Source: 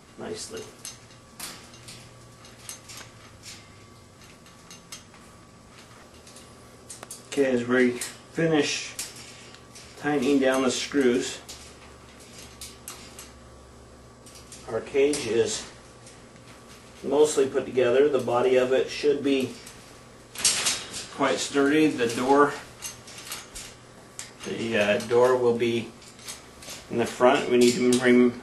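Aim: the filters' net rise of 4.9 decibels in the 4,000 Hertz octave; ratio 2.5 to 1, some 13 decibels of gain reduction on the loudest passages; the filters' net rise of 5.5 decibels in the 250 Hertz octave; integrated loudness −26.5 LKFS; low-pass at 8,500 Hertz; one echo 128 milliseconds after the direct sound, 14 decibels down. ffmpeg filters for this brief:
ffmpeg -i in.wav -af "lowpass=8500,equalizer=frequency=250:width_type=o:gain=6.5,equalizer=frequency=4000:width_type=o:gain=6.5,acompressor=threshold=-30dB:ratio=2.5,aecho=1:1:128:0.2,volume=5dB" out.wav

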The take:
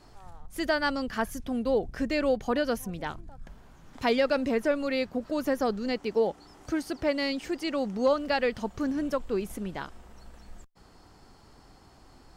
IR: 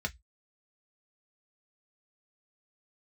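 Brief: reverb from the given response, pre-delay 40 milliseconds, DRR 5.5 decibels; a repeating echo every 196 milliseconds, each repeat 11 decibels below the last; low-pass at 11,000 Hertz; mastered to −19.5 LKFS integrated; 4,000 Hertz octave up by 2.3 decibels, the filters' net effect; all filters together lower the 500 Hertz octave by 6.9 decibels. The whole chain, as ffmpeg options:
-filter_complex "[0:a]lowpass=11000,equalizer=frequency=500:width_type=o:gain=-8,equalizer=frequency=4000:width_type=o:gain=3,aecho=1:1:196|392|588:0.282|0.0789|0.0221,asplit=2[link_01][link_02];[1:a]atrim=start_sample=2205,adelay=40[link_03];[link_02][link_03]afir=irnorm=-1:irlink=0,volume=-9.5dB[link_04];[link_01][link_04]amix=inputs=2:normalize=0,volume=11.5dB"

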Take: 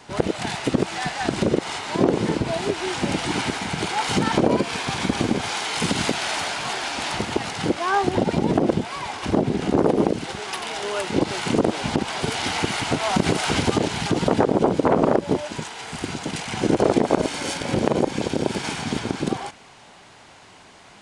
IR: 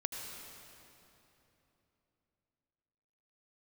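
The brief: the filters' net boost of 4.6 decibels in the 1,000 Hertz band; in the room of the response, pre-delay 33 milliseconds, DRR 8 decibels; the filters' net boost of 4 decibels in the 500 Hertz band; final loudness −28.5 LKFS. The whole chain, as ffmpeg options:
-filter_complex "[0:a]equalizer=frequency=500:width_type=o:gain=4,equalizer=frequency=1000:width_type=o:gain=4.5,asplit=2[link_01][link_02];[1:a]atrim=start_sample=2205,adelay=33[link_03];[link_02][link_03]afir=irnorm=-1:irlink=0,volume=-9.5dB[link_04];[link_01][link_04]amix=inputs=2:normalize=0,volume=-8.5dB"

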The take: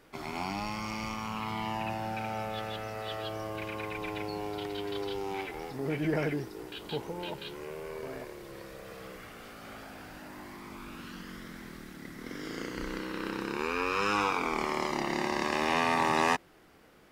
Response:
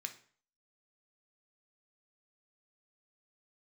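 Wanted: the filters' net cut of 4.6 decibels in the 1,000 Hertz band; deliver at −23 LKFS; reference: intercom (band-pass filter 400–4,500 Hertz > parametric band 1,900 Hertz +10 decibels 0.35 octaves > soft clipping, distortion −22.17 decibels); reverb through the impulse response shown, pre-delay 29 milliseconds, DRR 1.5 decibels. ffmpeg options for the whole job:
-filter_complex "[0:a]equalizer=frequency=1000:width_type=o:gain=-6,asplit=2[link_01][link_02];[1:a]atrim=start_sample=2205,adelay=29[link_03];[link_02][link_03]afir=irnorm=-1:irlink=0,volume=0.5dB[link_04];[link_01][link_04]amix=inputs=2:normalize=0,highpass=400,lowpass=4500,equalizer=frequency=1900:width_type=o:width=0.35:gain=10,asoftclip=threshold=-16dB,volume=9.5dB"

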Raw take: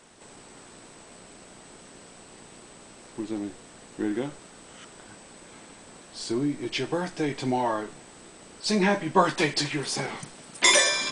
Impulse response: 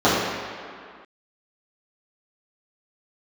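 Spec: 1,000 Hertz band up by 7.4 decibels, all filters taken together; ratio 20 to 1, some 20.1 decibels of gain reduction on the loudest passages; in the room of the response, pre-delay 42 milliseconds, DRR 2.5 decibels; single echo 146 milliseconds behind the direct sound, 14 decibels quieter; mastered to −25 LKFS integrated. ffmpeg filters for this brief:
-filter_complex "[0:a]equalizer=frequency=1000:width_type=o:gain=8.5,acompressor=threshold=-28dB:ratio=20,aecho=1:1:146:0.2,asplit=2[link_01][link_02];[1:a]atrim=start_sample=2205,adelay=42[link_03];[link_02][link_03]afir=irnorm=-1:irlink=0,volume=-27dB[link_04];[link_01][link_04]amix=inputs=2:normalize=0,volume=7.5dB"

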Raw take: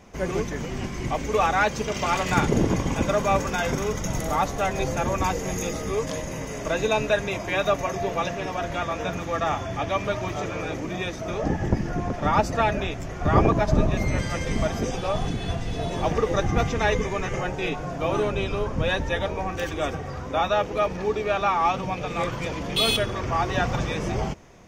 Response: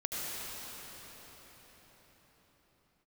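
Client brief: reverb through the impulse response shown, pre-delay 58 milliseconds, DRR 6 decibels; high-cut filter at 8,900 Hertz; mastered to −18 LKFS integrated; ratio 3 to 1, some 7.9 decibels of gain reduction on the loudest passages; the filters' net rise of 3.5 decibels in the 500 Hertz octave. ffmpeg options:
-filter_complex "[0:a]lowpass=8900,equalizer=frequency=500:width_type=o:gain=4.5,acompressor=threshold=-24dB:ratio=3,asplit=2[link_01][link_02];[1:a]atrim=start_sample=2205,adelay=58[link_03];[link_02][link_03]afir=irnorm=-1:irlink=0,volume=-11.5dB[link_04];[link_01][link_04]amix=inputs=2:normalize=0,volume=9dB"

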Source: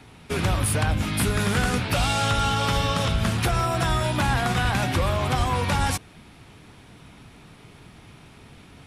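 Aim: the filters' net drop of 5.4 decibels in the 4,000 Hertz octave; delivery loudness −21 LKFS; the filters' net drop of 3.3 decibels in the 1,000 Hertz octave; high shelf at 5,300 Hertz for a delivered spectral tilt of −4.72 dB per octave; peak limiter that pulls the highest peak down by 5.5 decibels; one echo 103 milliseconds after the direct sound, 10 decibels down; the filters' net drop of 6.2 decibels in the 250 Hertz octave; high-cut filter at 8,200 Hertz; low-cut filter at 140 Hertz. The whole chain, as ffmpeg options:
ffmpeg -i in.wav -af "highpass=140,lowpass=8200,equalizer=frequency=250:width_type=o:gain=-7.5,equalizer=frequency=1000:width_type=o:gain=-3.5,equalizer=frequency=4000:width_type=o:gain=-3.5,highshelf=frequency=5300:gain=-8,alimiter=limit=-20dB:level=0:latency=1,aecho=1:1:103:0.316,volume=8.5dB" out.wav

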